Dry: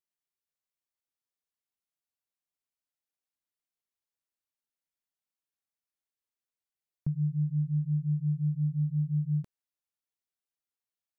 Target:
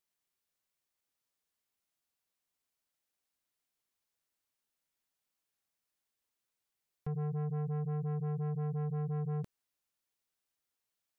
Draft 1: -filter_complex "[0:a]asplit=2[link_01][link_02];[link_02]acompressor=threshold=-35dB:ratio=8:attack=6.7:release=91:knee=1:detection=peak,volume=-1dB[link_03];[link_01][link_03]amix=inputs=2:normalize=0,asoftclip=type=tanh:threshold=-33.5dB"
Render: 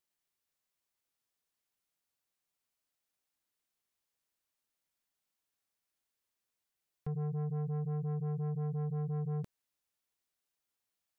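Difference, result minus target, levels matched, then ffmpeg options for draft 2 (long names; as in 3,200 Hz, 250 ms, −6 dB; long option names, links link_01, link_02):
downward compressor: peak gain reduction +6 dB
-filter_complex "[0:a]asplit=2[link_01][link_02];[link_02]acompressor=threshold=-28dB:ratio=8:attack=6.7:release=91:knee=1:detection=peak,volume=-1dB[link_03];[link_01][link_03]amix=inputs=2:normalize=0,asoftclip=type=tanh:threshold=-33.5dB"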